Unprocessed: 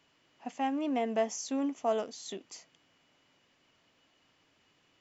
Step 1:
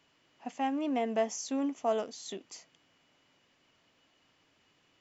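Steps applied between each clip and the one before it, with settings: no audible change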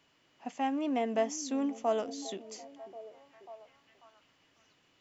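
repeats whose band climbs or falls 542 ms, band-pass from 300 Hz, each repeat 0.7 oct, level -12 dB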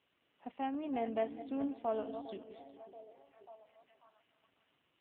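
backward echo that repeats 203 ms, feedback 42%, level -11 dB; trim -5 dB; AMR-NB 7.4 kbps 8 kHz

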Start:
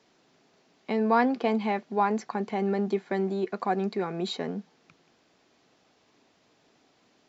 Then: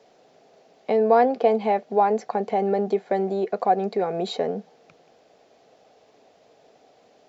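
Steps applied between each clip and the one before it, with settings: high-order bell 580 Hz +11.5 dB 1.1 oct; in parallel at -0.5 dB: compression, threshold -27 dBFS, peak gain reduction 15 dB; on the sum: trim -3.5 dB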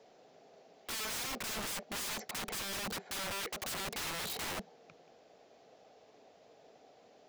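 peak limiter -15 dBFS, peak gain reduction 8 dB; integer overflow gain 29.5 dB; trim -4.5 dB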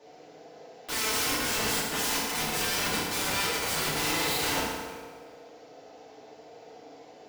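FDN reverb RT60 1.6 s, low-frequency decay 0.8×, high-frequency decay 0.75×, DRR -9 dB; trim +1.5 dB

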